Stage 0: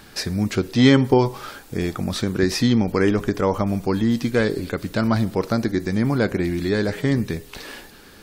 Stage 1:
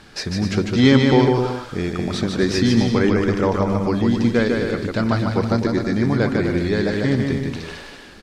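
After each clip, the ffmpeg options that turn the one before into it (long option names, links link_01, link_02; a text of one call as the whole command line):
ffmpeg -i in.wav -filter_complex "[0:a]lowpass=6700,asplit=2[link_01][link_02];[link_02]aecho=0:1:150|255|328.5|380|416:0.631|0.398|0.251|0.158|0.1[link_03];[link_01][link_03]amix=inputs=2:normalize=0" out.wav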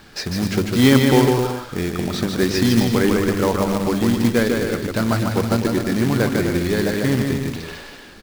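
ffmpeg -i in.wav -af "acrusher=bits=3:mode=log:mix=0:aa=0.000001,bandreject=frequency=50.32:width_type=h:width=4,bandreject=frequency=100.64:width_type=h:width=4" out.wav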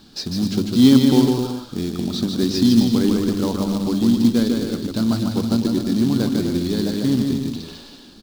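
ffmpeg -i in.wav -af "equalizer=frequency=250:width_type=o:width=1:gain=10,equalizer=frequency=500:width_type=o:width=1:gain=-4,equalizer=frequency=2000:width_type=o:width=1:gain=-12,equalizer=frequency=4000:width_type=o:width=1:gain=10,volume=-5.5dB" out.wav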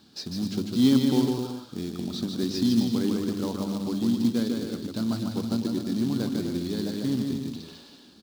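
ffmpeg -i in.wav -af "highpass=81,volume=-8dB" out.wav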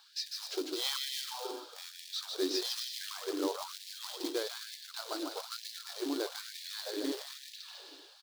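ffmpeg -i in.wav -af "afftfilt=real='re*gte(b*sr/1024,270*pow(1700/270,0.5+0.5*sin(2*PI*1.1*pts/sr)))':imag='im*gte(b*sr/1024,270*pow(1700/270,0.5+0.5*sin(2*PI*1.1*pts/sr)))':win_size=1024:overlap=0.75" out.wav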